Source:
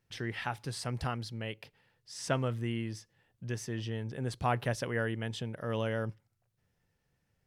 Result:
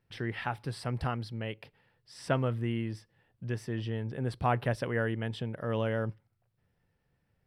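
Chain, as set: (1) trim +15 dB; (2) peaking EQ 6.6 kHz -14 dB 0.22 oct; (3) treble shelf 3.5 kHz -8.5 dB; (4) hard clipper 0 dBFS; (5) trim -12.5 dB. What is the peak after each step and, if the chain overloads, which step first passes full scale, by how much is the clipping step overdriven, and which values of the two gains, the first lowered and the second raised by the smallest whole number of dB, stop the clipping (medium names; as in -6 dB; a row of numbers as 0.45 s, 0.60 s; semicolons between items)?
-1.5 dBFS, -1.5 dBFS, -2.5 dBFS, -2.5 dBFS, -15.0 dBFS; nothing clips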